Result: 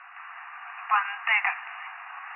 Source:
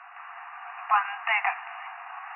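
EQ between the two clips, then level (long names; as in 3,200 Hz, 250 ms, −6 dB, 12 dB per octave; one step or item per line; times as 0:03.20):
band-pass filter 710–2,500 Hz
high-frequency loss of the air 170 metres
spectral tilt +6 dB per octave
0.0 dB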